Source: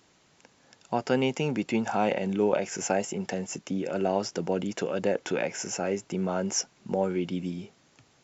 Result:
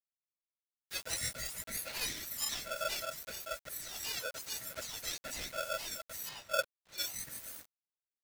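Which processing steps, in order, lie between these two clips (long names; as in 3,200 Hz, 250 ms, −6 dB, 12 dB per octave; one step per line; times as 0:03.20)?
frequency axis turned over on the octave scale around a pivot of 1,600 Hz
bit reduction 7 bits
0:06.29–0:06.98: high-frequency loss of the air 220 metres
ring modulator with a square carrier 1,000 Hz
level −7.5 dB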